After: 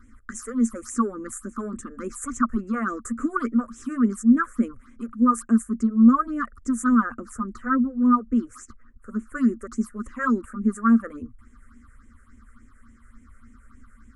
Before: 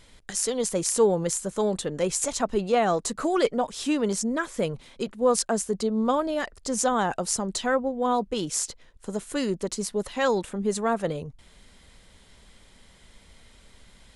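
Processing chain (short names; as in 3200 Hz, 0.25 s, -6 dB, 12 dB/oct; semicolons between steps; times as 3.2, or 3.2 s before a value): EQ curve 110 Hz 0 dB, 160 Hz -30 dB, 230 Hz +13 dB, 360 Hz -5 dB, 820 Hz -24 dB, 1200 Hz +13 dB, 2600 Hz -20 dB, 3700 Hz -27 dB, 7600 Hz -8 dB, 11000 Hz -11 dB; phaser stages 6, 3.5 Hz, lowest notch 250–1300 Hz; 6.95–9.35 high shelf 3600 Hz -9.5 dB; gain +3.5 dB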